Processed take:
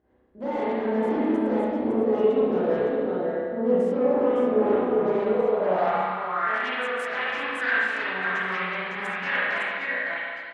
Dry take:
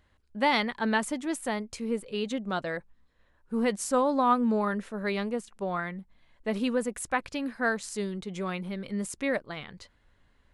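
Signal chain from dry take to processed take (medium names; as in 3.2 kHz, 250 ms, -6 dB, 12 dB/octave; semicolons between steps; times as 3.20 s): chorus voices 6, 0.19 Hz, delay 17 ms, depth 1.4 ms; in parallel at -2 dB: peak limiter -24.5 dBFS, peak gain reduction 11.5 dB; on the sum: level held to a coarse grid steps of 18 dB; on a send: delay 558 ms -7 dB; on the sum: sine folder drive 12 dB, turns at -22.5 dBFS; spring tank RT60 1.9 s, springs 32/44 ms, chirp 40 ms, DRR -10 dB; band-pass sweep 400 Hz -> 1.7 kHz, 5.30–6.65 s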